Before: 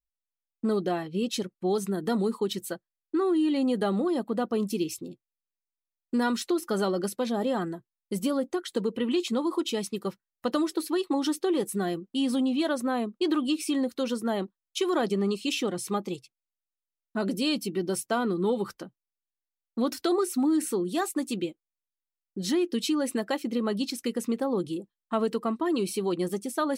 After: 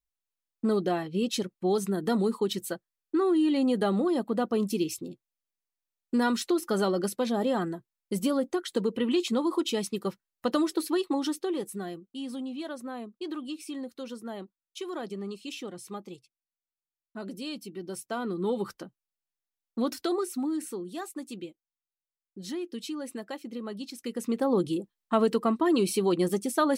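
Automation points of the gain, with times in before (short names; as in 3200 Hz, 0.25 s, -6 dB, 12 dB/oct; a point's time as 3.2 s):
10.92 s +0.5 dB
12.13 s -10 dB
17.77 s -10 dB
18.61 s -1.5 dB
19.86 s -1.5 dB
20.89 s -9 dB
23.89 s -9 dB
24.5 s +3 dB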